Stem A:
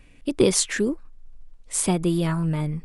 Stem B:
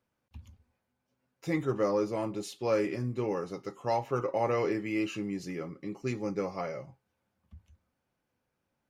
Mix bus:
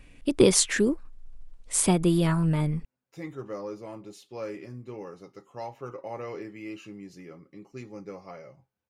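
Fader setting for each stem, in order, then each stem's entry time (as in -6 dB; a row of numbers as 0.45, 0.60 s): 0.0, -8.0 dB; 0.00, 1.70 s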